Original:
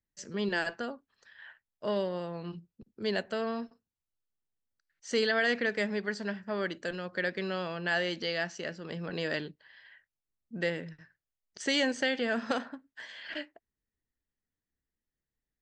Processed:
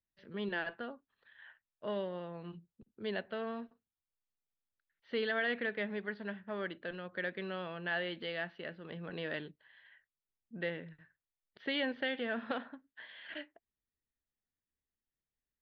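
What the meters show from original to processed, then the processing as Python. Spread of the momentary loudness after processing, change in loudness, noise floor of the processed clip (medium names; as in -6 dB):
17 LU, -6.5 dB, under -85 dBFS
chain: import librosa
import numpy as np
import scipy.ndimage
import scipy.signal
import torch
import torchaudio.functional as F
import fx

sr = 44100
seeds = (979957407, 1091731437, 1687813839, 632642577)

y = scipy.signal.sosfilt(scipy.signal.ellip(4, 1.0, 50, 3700.0, 'lowpass', fs=sr, output='sos'), x)
y = F.gain(torch.from_numpy(y), -5.5).numpy()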